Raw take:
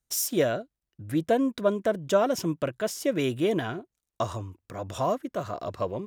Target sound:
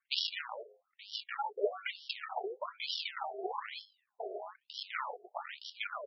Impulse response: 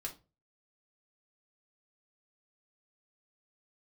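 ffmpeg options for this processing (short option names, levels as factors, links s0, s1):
-filter_complex "[0:a]bass=f=250:g=-3,treble=f=4000:g=14,bandreject=f=420.4:t=h:w=4,bandreject=f=840.8:t=h:w=4,bandreject=f=1261.2:t=h:w=4,bandreject=f=1681.6:t=h:w=4,bandreject=f=2102:t=h:w=4,bandreject=f=2522.4:t=h:w=4,bandreject=f=2942.8:t=h:w=4,bandreject=f=3363.2:t=h:w=4,bandreject=f=3783.6:t=h:w=4,bandreject=f=4204:t=h:w=4,bandreject=f=4624.4:t=h:w=4,bandreject=f=5044.8:t=h:w=4,bandreject=f=5465.2:t=h:w=4,bandreject=f=5885.6:t=h:w=4,bandreject=f=6306:t=h:w=4,bandreject=f=6726.4:t=h:w=4,bandreject=f=7146.8:t=h:w=4,bandreject=f=7567.2:t=h:w=4,bandreject=f=7987.6:t=h:w=4,bandreject=f=8408:t=h:w=4,bandreject=f=8828.4:t=h:w=4,bandreject=f=9248.8:t=h:w=4,bandreject=f=9669.2:t=h:w=4,bandreject=f=10089.6:t=h:w=4,bandreject=f=10510:t=h:w=4,bandreject=f=10930.4:t=h:w=4,bandreject=f=11350.8:t=h:w=4,bandreject=f=11771.2:t=h:w=4,bandreject=f=12191.6:t=h:w=4,bandreject=f=12612:t=h:w=4,bandreject=f=13032.4:t=h:w=4,bandreject=f=13452.8:t=h:w=4,bandreject=f=13873.2:t=h:w=4,bandreject=f=14293.6:t=h:w=4,bandreject=f=14714:t=h:w=4,bandreject=f=15134.4:t=h:w=4,bandreject=f=15554.8:t=h:w=4,bandreject=f=15975.2:t=h:w=4,bandreject=f=16395.6:t=h:w=4,bandreject=f=16816:t=h:w=4,acrossover=split=110|5800[s0][s1][s2];[s1]acompressor=threshold=0.0224:ratio=12[s3];[s0][s3][s2]amix=inputs=3:normalize=0,aresample=16000,acrusher=samples=24:mix=1:aa=0.000001:lfo=1:lforange=14.4:lforate=0.98,aresample=44100,afftfilt=real='re*between(b*sr/1024,500*pow(4100/500,0.5+0.5*sin(2*PI*1.1*pts/sr))/1.41,500*pow(4100/500,0.5+0.5*sin(2*PI*1.1*pts/sr))*1.41)':imag='im*between(b*sr/1024,500*pow(4100/500,0.5+0.5*sin(2*PI*1.1*pts/sr))/1.41,500*pow(4100/500,0.5+0.5*sin(2*PI*1.1*pts/sr))*1.41)':win_size=1024:overlap=0.75,volume=3.16"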